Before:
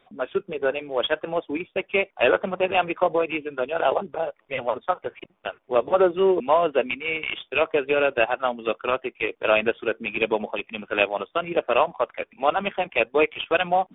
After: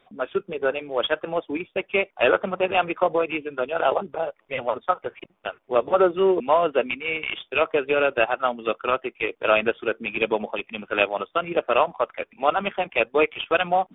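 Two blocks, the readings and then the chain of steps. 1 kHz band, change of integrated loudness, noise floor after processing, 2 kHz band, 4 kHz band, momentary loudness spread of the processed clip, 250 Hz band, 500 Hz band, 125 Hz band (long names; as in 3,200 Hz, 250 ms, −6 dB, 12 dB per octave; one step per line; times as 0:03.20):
+1.0 dB, +0.5 dB, −66 dBFS, +0.5 dB, can't be measured, 8 LU, 0.0 dB, 0.0 dB, 0.0 dB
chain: dynamic equaliser 1,300 Hz, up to +5 dB, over −43 dBFS, Q 7.7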